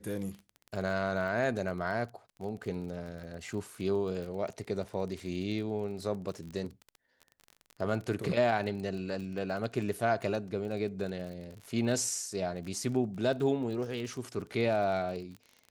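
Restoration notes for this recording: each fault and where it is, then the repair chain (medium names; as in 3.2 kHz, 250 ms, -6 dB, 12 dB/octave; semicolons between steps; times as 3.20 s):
crackle 31 per s -38 dBFS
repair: de-click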